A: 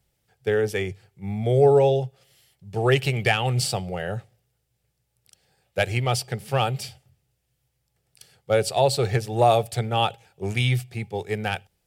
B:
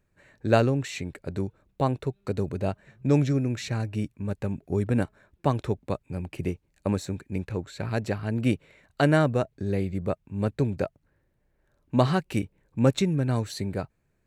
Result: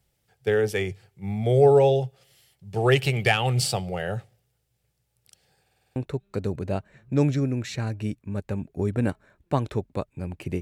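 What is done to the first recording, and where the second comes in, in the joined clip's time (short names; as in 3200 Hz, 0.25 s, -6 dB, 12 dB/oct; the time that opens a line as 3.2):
A
5.61 stutter in place 0.05 s, 7 plays
5.96 switch to B from 1.89 s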